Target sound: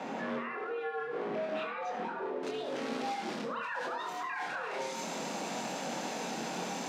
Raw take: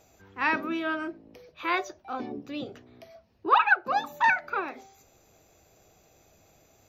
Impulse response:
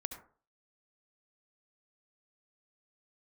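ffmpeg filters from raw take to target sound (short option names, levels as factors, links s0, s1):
-filter_complex "[0:a]aeval=exprs='val(0)+0.5*0.0168*sgn(val(0))':c=same,asetnsamples=n=441:p=0,asendcmd='2.43 lowpass f 5600',lowpass=2100,alimiter=level_in=4.22:limit=0.0631:level=0:latency=1:release=48,volume=0.237,flanger=delay=22.5:depth=4.2:speed=0.35,afreqshift=140[s0];[1:a]atrim=start_sample=2205[s1];[s0][s1]afir=irnorm=-1:irlink=0,volume=2.66"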